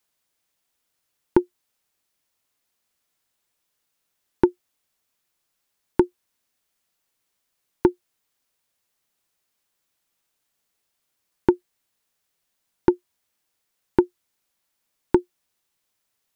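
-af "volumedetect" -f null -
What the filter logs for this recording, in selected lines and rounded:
mean_volume: -30.8 dB
max_volume: -2.8 dB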